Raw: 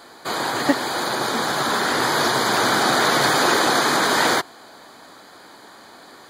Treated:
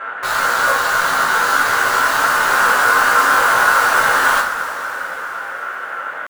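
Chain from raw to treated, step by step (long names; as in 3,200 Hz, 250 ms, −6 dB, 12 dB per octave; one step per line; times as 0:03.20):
compressor on every frequency bin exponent 0.6
high-pass filter 41 Hz 12 dB per octave
dynamic equaliser 520 Hz, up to +6 dB, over −35 dBFS, Q 3.3
low-pass with resonance 740 Hz, resonance Q 5.9
pitch shifter +11.5 semitones
in parallel at −5 dB: wrap-around overflow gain 11 dB
on the sum: coupled-rooms reverb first 0.33 s, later 4.8 s, from −18 dB, DRR −5.5 dB
level −11.5 dB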